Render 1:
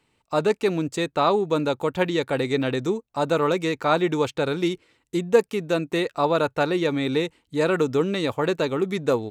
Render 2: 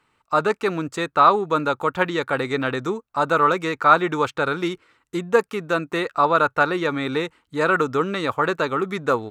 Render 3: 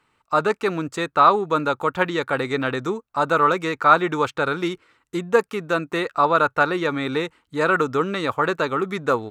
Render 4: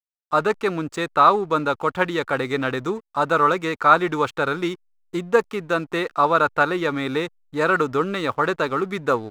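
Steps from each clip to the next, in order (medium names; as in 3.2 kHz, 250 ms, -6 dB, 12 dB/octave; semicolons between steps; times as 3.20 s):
peaking EQ 1.3 kHz +13.5 dB 0.97 oct; trim -2 dB
no audible change
hysteresis with a dead band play -39.5 dBFS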